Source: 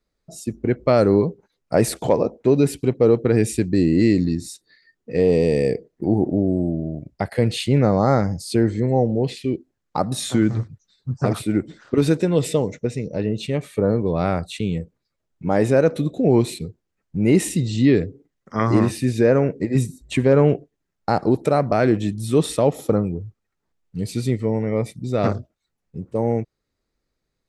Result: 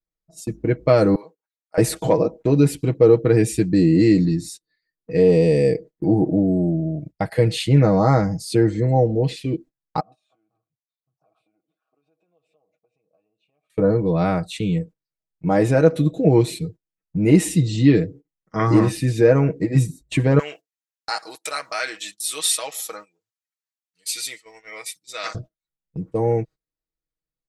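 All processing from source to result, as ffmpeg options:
-filter_complex "[0:a]asettb=1/sr,asplit=3[a][b][c];[a]atrim=end=1.154[d];[b]atrim=start=1.15:end=1.78,asetpts=PTS-STARTPTS,afade=t=in:d=0.004:c=qsin,afade=t=out:st=0.626:d=0.004:c=qsin,highpass=1.3k,equalizer=f=4.2k:t=o:w=2.7:g=-10[e];[c]atrim=start=1.776[f];[d][e]acrossfade=d=0.004:c1=hsin:c2=qsin[g];[g][f]acrossfade=d=0.004:c1=qsin:c2=hsin,asettb=1/sr,asplit=3[h][i][j];[h]atrim=end=10.004[k];[i]atrim=start=10:end=13.7,asetpts=PTS-STARTPTS,afade=t=in:d=0.004:c=qsin,afade=t=out:st=3.696:d=0.004:c=qsin,acompressor=threshold=-29dB:ratio=10:attack=3.2:release=140:knee=1:detection=peak,asplit=3[l][m][n];[l]bandpass=f=730:t=q:w=8,volume=0dB[o];[m]bandpass=f=1.09k:t=q:w=8,volume=-6dB[p];[n]bandpass=f=2.44k:t=q:w=8,volume=-9dB[q];[o][p][q]amix=inputs=3:normalize=0[r];[j]atrim=start=13.696[s];[k][r]acrossfade=d=0.004:c1=hsin:c2=qsin[t];[t][s]acrossfade=d=0.004:c1=qsin:c2=hsin,asettb=1/sr,asplit=3[u][v][w];[u]atrim=end=20.394[x];[v]atrim=start=20.39:end=25.35,asetpts=PTS-STARTPTS,afade=t=in:d=0.004:c=qsin,afade=t=out:st=4.956:d=0.004:c=qsin,highpass=1.4k,highshelf=f=2.6k:g=12[y];[w]atrim=start=25.346[z];[x][y]acrossfade=d=0.004:c1=hsin:c2=qsin[aa];[aa][z]acrossfade=d=0.004:c1=qsin:c2=hsin,agate=range=-19dB:threshold=-38dB:ratio=16:detection=peak,lowshelf=f=89:g=5,aecho=1:1:6.3:0.68,volume=-1dB"

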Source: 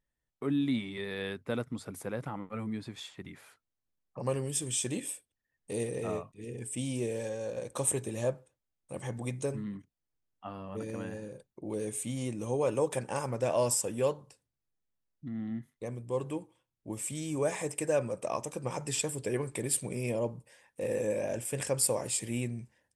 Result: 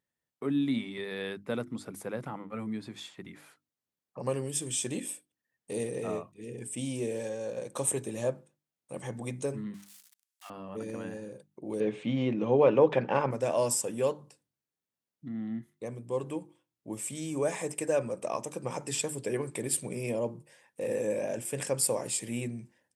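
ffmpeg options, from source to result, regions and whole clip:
-filter_complex "[0:a]asettb=1/sr,asplit=3[a][b][c];[a]atrim=end=9.744[d];[b]atrim=start=9.74:end=10.5,asetpts=PTS-STARTPTS,afade=t=in:d=0.004:c=qsin,afade=t=out:st=0.756:d=0.004:c=qsin,aeval=exprs='val(0)+0.5*0.00473*sgn(val(0))':c=same,highpass=1.5k,equalizer=f=9.4k:t=o:w=1.9:g=8.5[e];[c]atrim=start=10.496[f];[d][e]acrossfade=d=0.004:c1=hsin:c2=qsin[g];[g][f]acrossfade=d=0.004:c1=qsin:c2=hsin,asettb=1/sr,asplit=3[h][i][j];[h]atrim=end=11.804[k];[i]atrim=start=11.8:end=13.31,asetpts=PTS-STARTPTS,afade=t=in:d=0.004:c=qsin,afade=t=out:st=1.506:d=0.004:c=qsin,lowpass=f=3.4k:w=0.5412,lowpass=f=3.4k:w=1.3066,equalizer=f=100:t=o:w=0.21:g=-13.5,acontrast=74[l];[j]atrim=start=13.306[m];[k][l]acrossfade=d=0.004:c1=hsin:c2=qsin[n];[n][m]acrossfade=d=0.004:c1=qsin:c2=hsin,highpass=160,lowshelf=f=240:g=4.5,bandreject=f=50:t=h:w=6,bandreject=f=100:t=h:w=6,bandreject=f=150:t=h:w=6,bandreject=f=200:t=h:w=6,bandreject=f=250:t=h:w=6,bandreject=f=300:t=h:w=6,bandreject=f=350:t=h:w=6"

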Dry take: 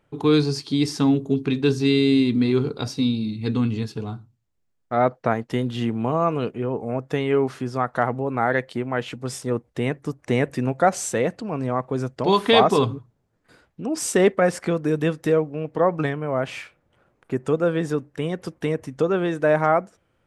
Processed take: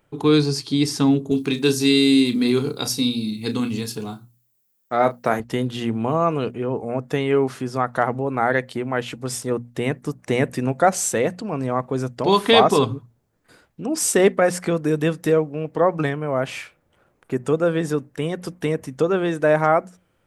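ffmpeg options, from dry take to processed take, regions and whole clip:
-filter_complex "[0:a]asettb=1/sr,asplit=3[a][b][c];[a]atrim=end=1.314[d];[b]atrim=start=1.31:end=5.4,asetpts=PTS-STARTPTS,afade=t=in:d=0.004:c=qsin,afade=t=out:st=4.086:d=0.004:c=qsin,highpass=140,aemphasis=mode=production:type=50fm,asplit=2[e][f];[f]adelay=33,volume=-10.5dB[g];[e][g]amix=inputs=2:normalize=0,atrim=end_sample=180369[h];[c]atrim=start=5.396[i];[d][h]acrossfade=d=0.004:c1=hsin:c2=qsin[j];[j][i]acrossfade=d=0.004:c1=qsin:c2=hsin,highshelf=f=8.6k:g=10,bandreject=f=60:t=h:w=6,bandreject=f=120:t=h:w=6,bandreject=f=180:t=h:w=6,bandreject=f=240:t=h:w=6,volume=1.5dB"

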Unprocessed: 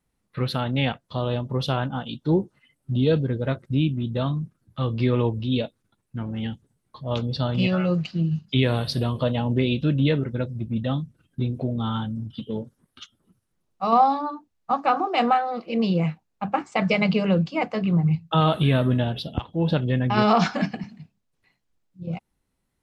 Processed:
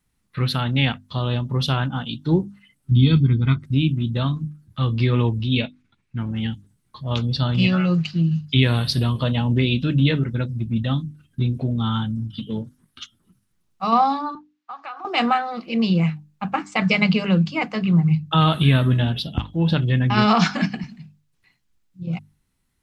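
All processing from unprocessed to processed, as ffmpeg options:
-filter_complex "[0:a]asettb=1/sr,asplit=3[a][b][c];[a]atrim=end=2.914[d];[b]atrim=start=2.91:end=3.63,asetpts=PTS-STARTPTS,afade=t=in:d=0.004:c=qsin,afade=t=out:st=0.716:d=0.004:c=qsin,lowpass=4.8k,equalizer=f=740:t=o:w=1.3:g=-6,aecho=1:1:0.9:0.88,atrim=end_sample=31752[e];[c]atrim=start=3.626[f];[d][e]acrossfade=d=0.004:c1=hsin:c2=qsin[g];[g][f]acrossfade=d=0.004:c1=qsin:c2=hsin,asettb=1/sr,asplit=3[h][i][j];[h]atrim=end=5.544[k];[i]atrim=start=5.54:end=6.18,asetpts=PTS-STARTPTS,afade=t=in:d=0.004:c=qsin,afade=t=out:st=0.636:d=0.004:c=qsin,lowpass=5.1k,equalizer=f=2.3k:w=2.6:g=9[l];[j]atrim=start=6.176[m];[k][l]acrossfade=d=0.004:c1=hsin:c2=qsin[n];[n][m]acrossfade=d=0.004:c1=qsin:c2=hsin,asettb=1/sr,asplit=3[o][p][q];[o]atrim=end=14.354[r];[p]atrim=start=14.35:end=15.05,asetpts=PTS-STARTPTS,afade=t=in:d=0.004:c=qsin,afade=t=out:st=0.696:d=0.004:c=qsin,highpass=740,lowpass=4.3k,acompressor=threshold=-36dB:ratio=3:attack=3.2:release=140:knee=1:detection=peak[s];[q]atrim=start=15.046[t];[r][s]acrossfade=d=0.004:c1=hsin:c2=qsin[u];[u][t]acrossfade=d=0.004:c1=qsin:c2=hsin,equalizer=f=550:t=o:w=1.5:g=-10,bandreject=f=50:t=h:w=6,bandreject=f=100:t=h:w=6,bandreject=f=150:t=h:w=6,bandreject=f=200:t=h:w=6,bandreject=f=250:t=h:w=6,bandreject=f=300:t=h:w=6,volume=6dB"

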